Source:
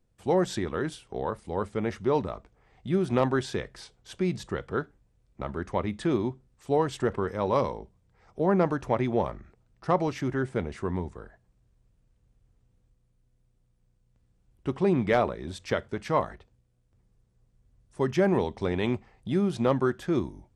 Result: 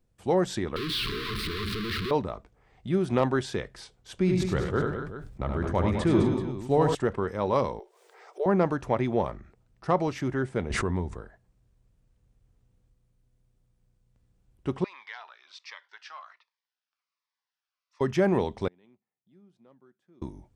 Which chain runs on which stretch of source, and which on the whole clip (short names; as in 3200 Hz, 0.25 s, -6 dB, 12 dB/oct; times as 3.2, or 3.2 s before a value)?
0.76–2.11 infinite clipping + brick-wall FIR band-stop 460–1000 Hz + resonant high shelf 5300 Hz -9 dB, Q 3
4.18–6.95 low shelf 130 Hz +9.5 dB + tapped delay 75/102/209/246/383 ms -7/-7/-9/-13.5/-13.5 dB + sustainer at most 51 dB/s
7.79–8.46 brick-wall FIR high-pass 370 Hz + upward compressor, threshold -40 dBFS + frequency shift -23 Hz
10.7–11.21 low shelf 63 Hz +10 dB + backwards sustainer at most 23 dB/s
14.84–18.01 Chebyshev band-pass 1000–5300 Hz, order 3 + compressor 2:1, threshold -40 dBFS + cascading phaser falling 1.3 Hz
18.68–20.22 band-pass 180 Hz, Q 1.5 + differentiator
whole clip: dry